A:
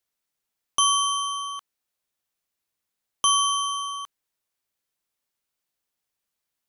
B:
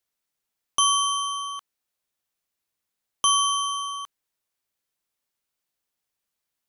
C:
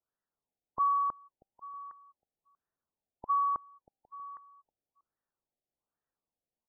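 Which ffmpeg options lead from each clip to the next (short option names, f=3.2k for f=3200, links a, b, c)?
-af anull
-filter_complex "[0:a]asplit=2[a][b];[b]adelay=319,lowpass=f=2.6k:p=1,volume=-4dB,asplit=2[c][d];[d]adelay=319,lowpass=f=2.6k:p=1,volume=0.25,asplit=2[e][f];[f]adelay=319,lowpass=f=2.6k:p=1,volume=0.25[g];[c][e][g]amix=inputs=3:normalize=0[h];[a][h]amix=inputs=2:normalize=0,afftfilt=real='re*lt(b*sr/1024,800*pow(2000/800,0.5+0.5*sin(2*PI*1.2*pts/sr)))':imag='im*lt(b*sr/1024,800*pow(2000/800,0.5+0.5*sin(2*PI*1.2*pts/sr)))':win_size=1024:overlap=0.75,volume=-3dB"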